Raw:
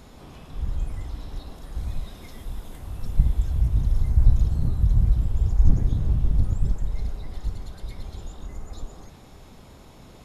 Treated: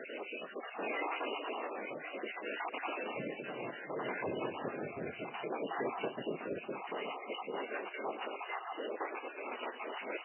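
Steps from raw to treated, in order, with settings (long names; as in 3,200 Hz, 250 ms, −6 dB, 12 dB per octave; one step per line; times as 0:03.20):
time-frequency cells dropped at random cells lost 48%
high-pass filter 380 Hz 24 dB per octave
parametric band 2,700 Hz +7.5 dB 1.1 octaves
brickwall limiter −42 dBFS, peak gain reduction 7.5 dB
rotating-speaker cabinet horn 0.65 Hz, later 6.3 Hz, at 0:06.78
feedback echo with a low-pass in the loop 226 ms, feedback 39%, low-pass 2,300 Hz, level −9.5 dB
level +16 dB
MP3 8 kbit/s 12,000 Hz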